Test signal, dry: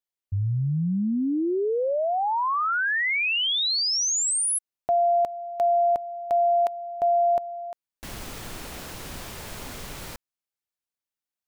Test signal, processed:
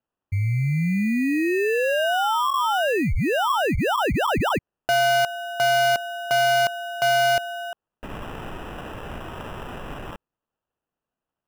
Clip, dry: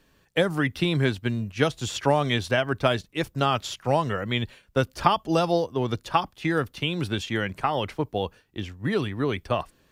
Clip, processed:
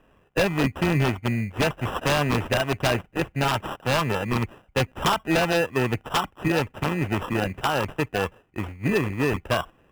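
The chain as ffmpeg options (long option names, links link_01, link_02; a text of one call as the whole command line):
ffmpeg -i in.wav -af "acrusher=samples=20:mix=1:aa=0.000001,highshelf=frequency=3300:width_type=q:width=3:gain=-7.5,aeval=exprs='0.15*(abs(mod(val(0)/0.15+3,4)-2)-1)':channel_layout=same,volume=2.5dB" out.wav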